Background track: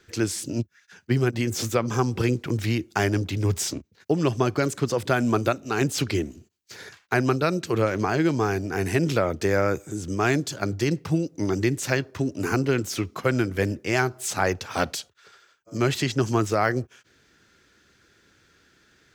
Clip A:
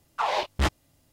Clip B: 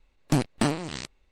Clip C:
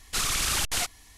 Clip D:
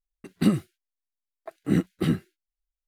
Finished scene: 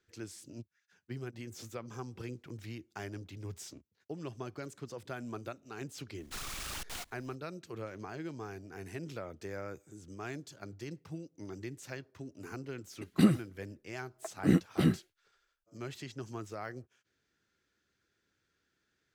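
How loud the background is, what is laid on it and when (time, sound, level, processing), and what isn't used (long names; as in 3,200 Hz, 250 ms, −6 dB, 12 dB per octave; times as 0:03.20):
background track −19.5 dB
0:06.18: mix in C −18 dB + each half-wave held at its own peak
0:12.77: mix in D −3 dB
not used: A, B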